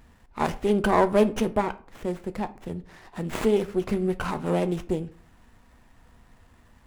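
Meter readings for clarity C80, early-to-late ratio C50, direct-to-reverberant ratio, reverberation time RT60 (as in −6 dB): 22.5 dB, 18.0 dB, 11.0 dB, 0.45 s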